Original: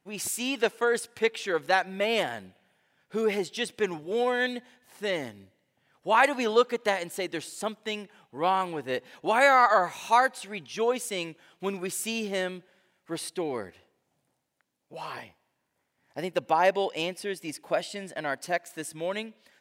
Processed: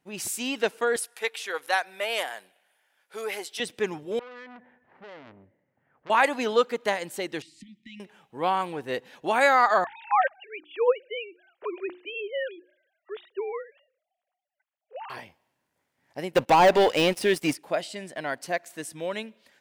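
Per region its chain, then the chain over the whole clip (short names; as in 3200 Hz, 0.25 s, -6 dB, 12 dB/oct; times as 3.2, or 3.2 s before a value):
0.96–3.6 HPF 630 Hz + bell 11000 Hz +10.5 dB 0.52 oct
4.19–6.1 LPF 1900 Hz 24 dB/oct + compressor 16:1, threshold -35 dBFS + core saturation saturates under 2800 Hz
7.42–8 tape spacing loss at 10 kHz 22 dB + compressor, threshold -37 dBFS + brick-wall FIR band-stop 350–1800 Hz
9.84–15.1 sine-wave speech + notches 60/120/180/240/300/360 Hz
16.34–17.55 de-esser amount 90% + sample leveller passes 3
whole clip: dry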